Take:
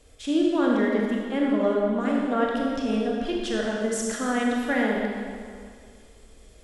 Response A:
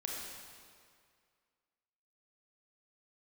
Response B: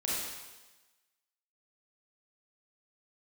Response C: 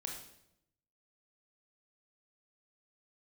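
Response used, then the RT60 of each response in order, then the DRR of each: A; 2.1, 1.2, 0.80 seconds; −2.5, −6.5, 0.5 decibels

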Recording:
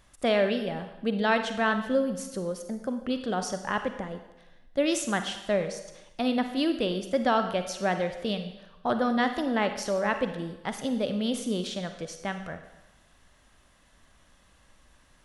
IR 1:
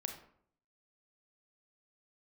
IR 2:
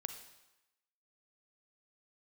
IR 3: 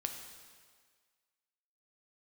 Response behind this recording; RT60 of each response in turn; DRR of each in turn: 2; 0.60, 0.95, 1.7 seconds; 4.5, 7.5, 4.0 decibels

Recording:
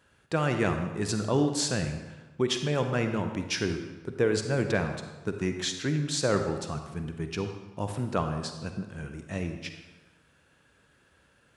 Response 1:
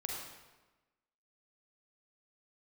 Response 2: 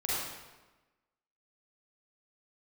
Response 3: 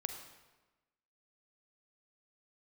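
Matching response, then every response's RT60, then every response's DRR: 3; 1.2, 1.2, 1.2 seconds; −1.5, −8.0, 6.0 decibels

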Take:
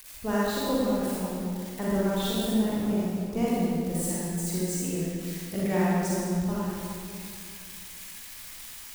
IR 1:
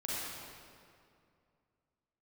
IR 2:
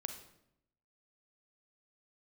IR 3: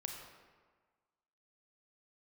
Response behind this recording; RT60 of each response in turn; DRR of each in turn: 1; 2.4, 0.80, 1.5 seconds; −8.0, 6.5, 2.0 decibels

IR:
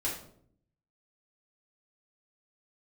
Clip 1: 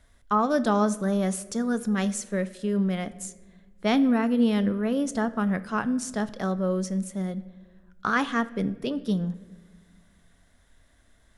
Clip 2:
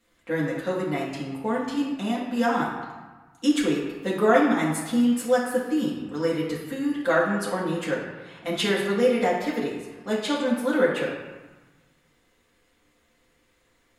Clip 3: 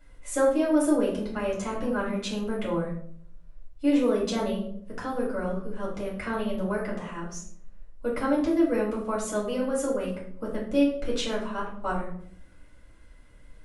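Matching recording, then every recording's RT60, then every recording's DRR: 3; 1.6, 1.3, 0.65 seconds; 13.0, −6.5, −6.5 decibels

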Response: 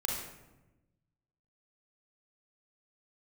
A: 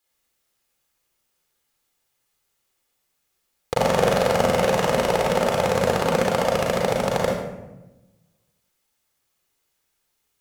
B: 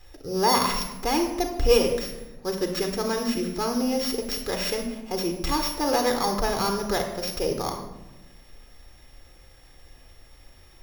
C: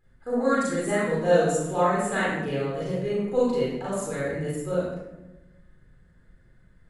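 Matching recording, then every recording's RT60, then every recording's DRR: A; 1.0, 1.1, 1.0 seconds; −2.0, 4.5, −8.0 decibels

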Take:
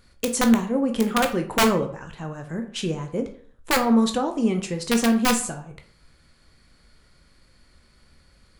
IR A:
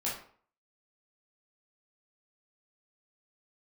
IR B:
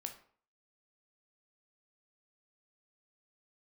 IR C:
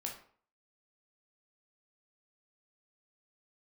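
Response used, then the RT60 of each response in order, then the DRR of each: B; 0.50, 0.50, 0.50 seconds; −7.0, 5.0, 0.0 decibels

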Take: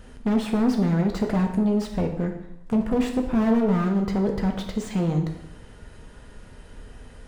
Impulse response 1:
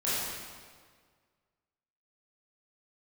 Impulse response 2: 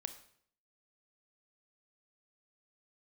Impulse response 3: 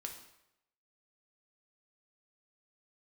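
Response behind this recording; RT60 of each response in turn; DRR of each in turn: 3; 1.7, 0.60, 0.85 seconds; −11.0, 9.0, 2.5 decibels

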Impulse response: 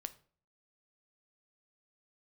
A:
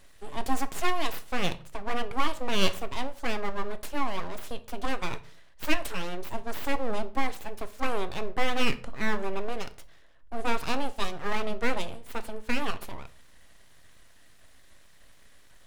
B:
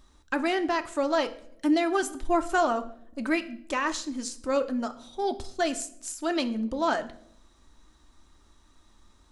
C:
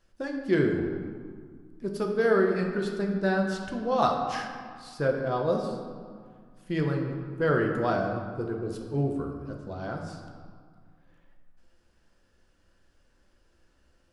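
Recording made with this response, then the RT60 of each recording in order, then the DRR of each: A; 0.45 s, non-exponential decay, 1.9 s; 11.0, 7.0, 1.0 decibels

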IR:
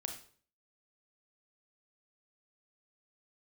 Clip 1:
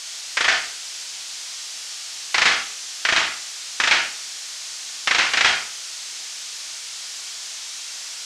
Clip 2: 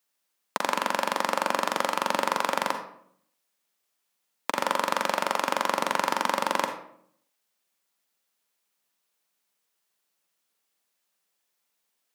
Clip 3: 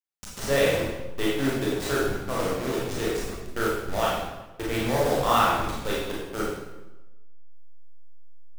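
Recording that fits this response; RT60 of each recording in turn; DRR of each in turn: 1; 0.50, 0.65, 1.1 seconds; 3.5, 5.5, −6.0 decibels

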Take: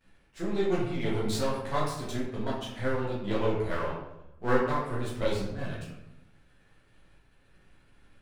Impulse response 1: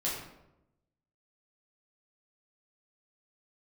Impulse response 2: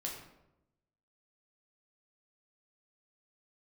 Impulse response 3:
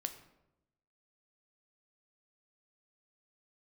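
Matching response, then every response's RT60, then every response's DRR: 1; 0.90, 0.90, 0.90 seconds; −7.0, −2.0, 7.5 decibels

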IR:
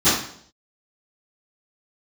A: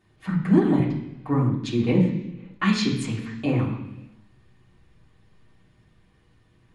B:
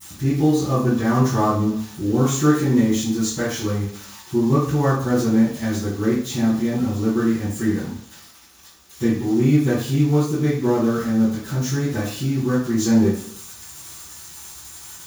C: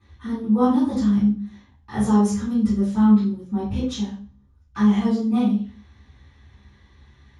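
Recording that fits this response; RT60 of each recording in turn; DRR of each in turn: B; non-exponential decay, 0.60 s, 0.40 s; −5.5, −21.5, −14.0 decibels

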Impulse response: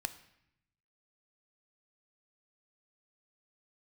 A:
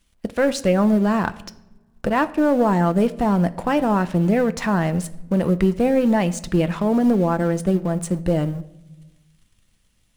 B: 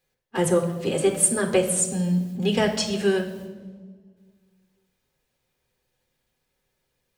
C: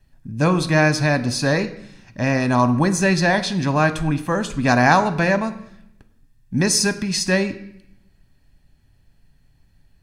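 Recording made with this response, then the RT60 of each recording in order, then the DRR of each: C; non-exponential decay, 1.4 s, 0.75 s; 11.0, 1.5, 10.5 decibels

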